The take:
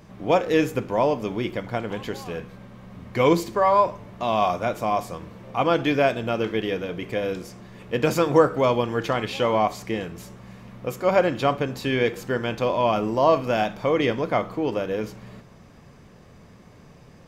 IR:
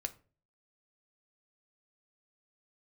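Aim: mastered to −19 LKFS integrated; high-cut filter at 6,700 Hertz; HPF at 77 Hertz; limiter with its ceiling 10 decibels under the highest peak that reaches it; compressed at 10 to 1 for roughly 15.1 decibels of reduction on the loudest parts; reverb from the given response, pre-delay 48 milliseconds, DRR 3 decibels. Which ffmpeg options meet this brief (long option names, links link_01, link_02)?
-filter_complex "[0:a]highpass=77,lowpass=6700,acompressor=threshold=-28dB:ratio=10,alimiter=level_in=1dB:limit=-24dB:level=0:latency=1,volume=-1dB,asplit=2[link_01][link_02];[1:a]atrim=start_sample=2205,adelay=48[link_03];[link_02][link_03]afir=irnorm=-1:irlink=0,volume=-2.5dB[link_04];[link_01][link_04]amix=inputs=2:normalize=0,volume=16dB"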